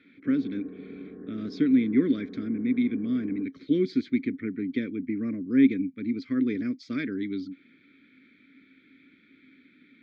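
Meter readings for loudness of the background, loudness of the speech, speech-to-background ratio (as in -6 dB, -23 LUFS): -43.0 LUFS, -27.5 LUFS, 15.5 dB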